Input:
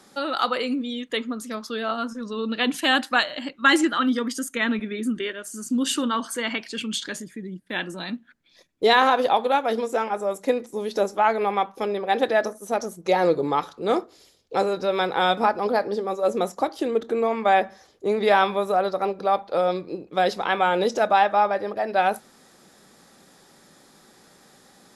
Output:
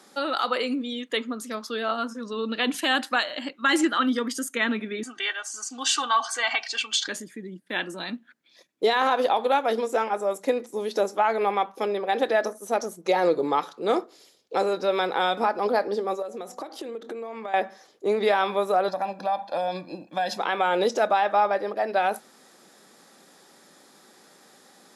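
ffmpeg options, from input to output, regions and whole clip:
ffmpeg -i in.wav -filter_complex "[0:a]asettb=1/sr,asplit=3[link_01][link_02][link_03];[link_01]atrim=end=5.034[link_04];[link_02]atrim=start=5.03:end=7.08,asetpts=PTS-STARTPTS,afade=type=in:duration=0.004:curve=qsin,afade=type=out:start_time=2.046:duration=0.004:curve=qsin,lowpass=frequency=6000:width_type=q:width=1.7,lowshelf=frequency=540:width_type=q:width=3:gain=-11.5,aecho=1:1:2.6:0.97,atrim=end_sample=90405[link_05];[link_03]atrim=start=7.076[link_06];[link_04][link_05]acrossfade=duration=0.004:curve1=hsin:curve2=qsin[link_07];[link_07][link_06]acrossfade=duration=0.004:curve1=qsin:curve2=hsin,asettb=1/sr,asplit=3[link_08][link_09][link_10];[link_08]atrim=end=16.224[link_11];[link_09]atrim=start=16.22:end=17.54,asetpts=PTS-STARTPTS,afade=type=in:duration=0.004:curve=qsin,afade=type=out:start_time=1.316:duration=0.004:curve=qsin,bandreject=frequency=248.6:width_type=h:width=4,bandreject=frequency=497.2:width_type=h:width=4,bandreject=frequency=745.8:width_type=h:width=4,acompressor=threshold=-30dB:ratio=16:attack=3.2:release=140:knee=1:detection=peak[link_12];[link_10]atrim=start=17.536[link_13];[link_11][link_12]acrossfade=duration=0.004:curve1=hsin:curve2=qsin[link_14];[link_14][link_13]acrossfade=duration=0.004:curve1=qsin:curve2=hsin,asettb=1/sr,asplit=3[link_15][link_16][link_17];[link_15]atrim=end=18.884[link_18];[link_16]atrim=start=18.88:end=20.38,asetpts=PTS-STARTPTS,afade=type=in:duration=0.004:curve=qsin,afade=type=out:start_time=1.496:duration=0.004:curve=qsin,aecho=1:1:1.2:0.95,atrim=end_sample=66150,acompressor=threshold=-24dB:ratio=3:attack=3.2:release=140:knee=1:detection=peak[link_19];[link_17]atrim=start=20.376[link_20];[link_18][link_19]acrossfade=duration=0.004:curve1=hsin:curve2=qsin[link_21];[link_21][link_20]acrossfade=duration=0.004:curve1=qsin:curve2=hsin,highpass=230,alimiter=limit=-12dB:level=0:latency=1:release=75" out.wav

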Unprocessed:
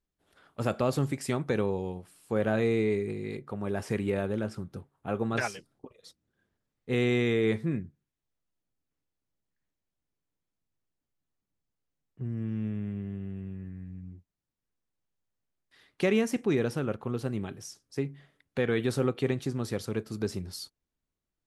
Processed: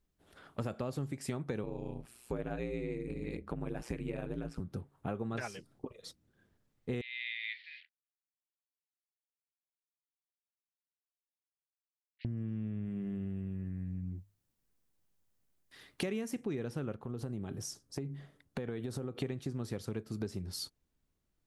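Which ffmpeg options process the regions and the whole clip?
ffmpeg -i in.wav -filter_complex "[0:a]asettb=1/sr,asplit=3[link_01][link_02][link_03];[link_01]atrim=end=1.634[link_04];[link_02]atrim=start=1.63:end=4.6,asetpts=PTS-STARTPTS,afade=type=in:duration=0.004:curve=qsin,afade=type=out:start_time=2.966:duration=0.004:curve=qsin,equalizer=frequency=2500:width_type=o:width=0.26:gain=5.5,aeval=exprs='val(0)*sin(2*PI*61*n/s)':channel_layout=same[link_05];[link_03]atrim=start=4.596[link_06];[link_04][link_05]acrossfade=duration=0.004:curve1=hsin:curve2=qsin[link_07];[link_07][link_06]acrossfade=duration=0.004:curve1=qsin:curve2=hsin,asettb=1/sr,asplit=3[link_08][link_09][link_10];[link_08]atrim=end=7.014[link_11];[link_09]atrim=start=7.01:end=12.25,asetpts=PTS-STARTPTS,afade=type=in:duration=0.004:curve=qsin,afade=type=out:start_time=5.236:duration=0.004:curve=qsin,acrusher=bits=7:mix=0:aa=0.5,asuperpass=centerf=2900:order=12:qfactor=1.1[link_12];[link_10]atrim=start=12.246[link_13];[link_11][link_12]acrossfade=duration=0.004:curve1=hsin:curve2=qsin[link_14];[link_14][link_13]acrossfade=duration=0.004:curve1=qsin:curve2=hsin,asettb=1/sr,asplit=3[link_15][link_16][link_17];[link_15]atrim=end=12.854[link_18];[link_16]atrim=start=12.85:end=16.44,asetpts=PTS-STARTPTS,afade=type=in:duration=0.004:curve=qsin,afade=type=out:start_time=3.586:duration=0.004:curve=qsin,highshelf=frequency=7400:gain=8,bandreject=frequency=50:width_type=h:width=6,bandreject=frequency=100:width_type=h:width=6,bandreject=frequency=150:width_type=h:width=6[link_19];[link_17]atrim=start=16.436[link_20];[link_18][link_19]acrossfade=duration=0.004:curve1=hsin:curve2=qsin[link_21];[link_21][link_20]acrossfade=duration=0.004:curve1=qsin:curve2=hsin,asettb=1/sr,asplit=3[link_22][link_23][link_24];[link_22]atrim=end=16.994[link_25];[link_23]atrim=start=16.99:end=19.22,asetpts=PTS-STARTPTS,afade=type=in:duration=0.004:curve=qsin,afade=type=out:start_time=2.226:duration=0.004:curve=qsin,equalizer=frequency=2400:width_type=o:width=1.4:gain=-5.5,acompressor=threshold=-38dB:ratio=3:attack=3.2:release=140:knee=1:detection=peak[link_26];[link_24]atrim=start=19.216[link_27];[link_25][link_26]acrossfade=duration=0.004:curve1=hsin:curve2=qsin[link_28];[link_28][link_27]acrossfade=duration=0.004:curve1=qsin:curve2=hsin,lowshelf=frequency=360:gain=5,acompressor=threshold=-38dB:ratio=6,volume=3dB" out.wav

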